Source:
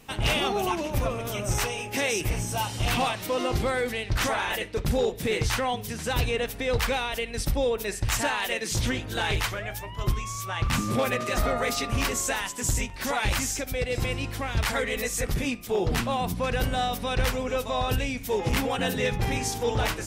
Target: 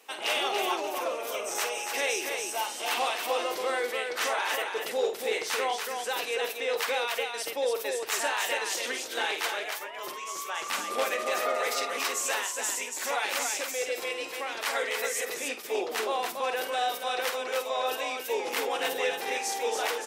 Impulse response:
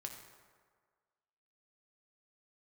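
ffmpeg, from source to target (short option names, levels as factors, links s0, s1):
-af "highpass=f=390:w=0.5412,highpass=f=390:w=1.3066,aecho=1:1:49.56|282.8:0.355|0.562,volume=0.75"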